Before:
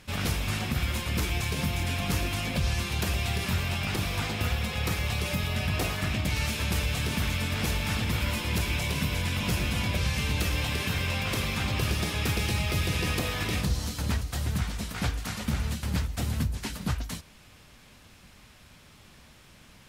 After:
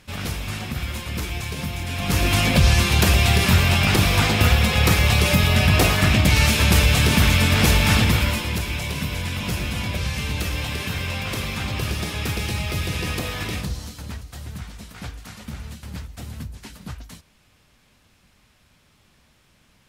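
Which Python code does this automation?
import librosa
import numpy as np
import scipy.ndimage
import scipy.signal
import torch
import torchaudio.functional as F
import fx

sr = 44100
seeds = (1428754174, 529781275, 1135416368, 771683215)

y = fx.gain(x, sr, db=fx.line((1.87, 0.5), (2.34, 12.0), (8.0, 12.0), (8.61, 2.0), (13.46, 2.0), (14.09, -5.5)))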